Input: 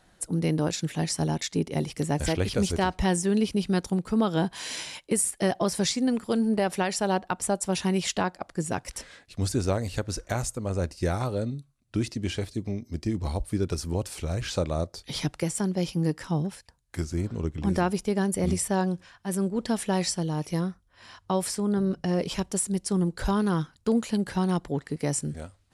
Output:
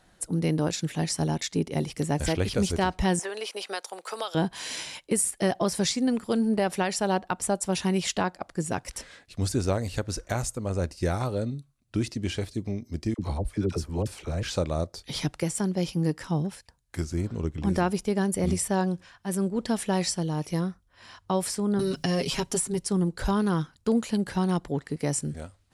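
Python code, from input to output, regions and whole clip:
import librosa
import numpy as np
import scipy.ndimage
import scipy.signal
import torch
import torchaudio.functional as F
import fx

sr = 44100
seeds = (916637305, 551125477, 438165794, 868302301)

y = fx.chain(x, sr, fx.highpass(hz=550.0, slope=24),
    fx.band_squash(depth_pct=100), at=(3.19, 4.35))
y = fx.chain(y, sr, fx.high_shelf(hz=3900.0, db=-6.5),
    fx.dispersion(late='lows', ms=51.0, hz=720.0), at=(13.14, 14.43))
y = fx.chain(y, sr, fx.peak_eq(hz=550.0, db=-4.0, octaves=0.35),
    fx.comb(ms=7.4, depth=0.8),
    fx.band_squash(depth_pct=70), at=(21.79, 22.87))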